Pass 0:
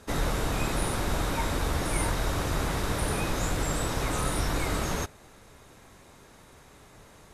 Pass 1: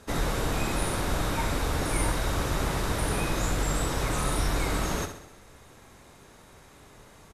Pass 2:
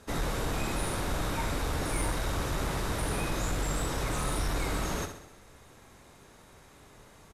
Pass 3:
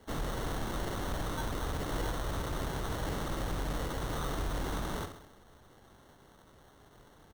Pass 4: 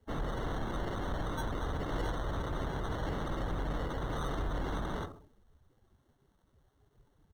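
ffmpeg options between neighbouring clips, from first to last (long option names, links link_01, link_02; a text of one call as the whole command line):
ffmpeg -i in.wav -af "aecho=1:1:65|130|195|260|325|390:0.355|0.185|0.0959|0.0499|0.0259|0.0135" out.wav
ffmpeg -i in.wav -af "asoftclip=type=tanh:threshold=-18.5dB,volume=-2.5dB" out.wav
ffmpeg -i in.wav -af "acrusher=samples=18:mix=1:aa=0.000001,volume=-4dB" out.wav
ffmpeg -i in.wav -af "afftdn=noise_reduction=17:noise_floor=-47" out.wav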